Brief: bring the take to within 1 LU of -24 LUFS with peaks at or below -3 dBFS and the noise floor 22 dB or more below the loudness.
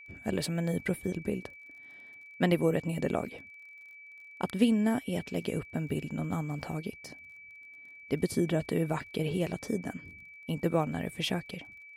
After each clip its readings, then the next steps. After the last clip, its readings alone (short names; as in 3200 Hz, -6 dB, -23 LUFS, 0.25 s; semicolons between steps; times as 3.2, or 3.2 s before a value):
ticks 34/s; steady tone 2300 Hz; tone level -48 dBFS; loudness -32.0 LUFS; peak -12.0 dBFS; loudness target -24.0 LUFS
-> de-click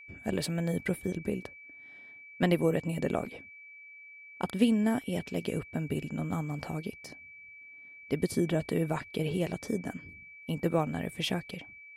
ticks 0/s; steady tone 2300 Hz; tone level -48 dBFS
-> notch 2300 Hz, Q 30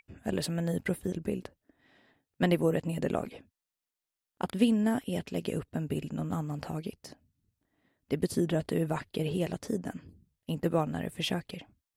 steady tone none; loudness -32.0 LUFS; peak -12.0 dBFS; loudness target -24.0 LUFS
-> gain +8 dB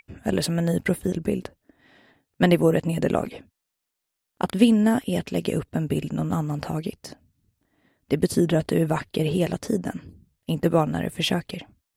loudness -24.0 LUFS; peak -4.0 dBFS; noise floor -82 dBFS